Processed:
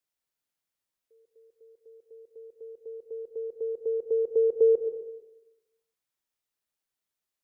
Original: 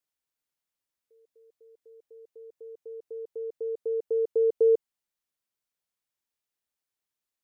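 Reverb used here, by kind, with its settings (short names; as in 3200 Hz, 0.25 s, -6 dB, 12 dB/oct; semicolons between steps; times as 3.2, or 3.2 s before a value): digital reverb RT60 1 s, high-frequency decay 0.5×, pre-delay 50 ms, DRR 6.5 dB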